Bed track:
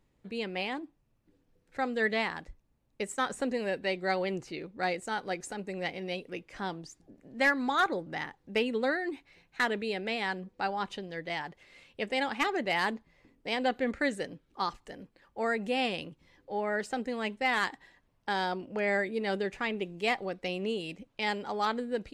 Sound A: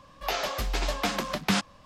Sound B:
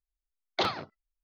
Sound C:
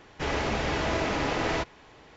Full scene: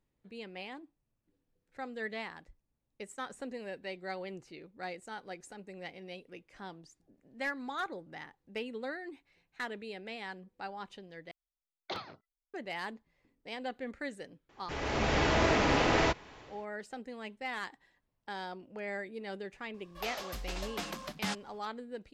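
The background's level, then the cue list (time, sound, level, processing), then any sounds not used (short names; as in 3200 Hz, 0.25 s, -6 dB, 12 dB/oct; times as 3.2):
bed track -10 dB
11.31 replace with B -11.5 dB
14.49 add C -10.5 dB + AGC gain up to 12 dB
19.74 add A -11.5 dB + high shelf 5300 Hz +4 dB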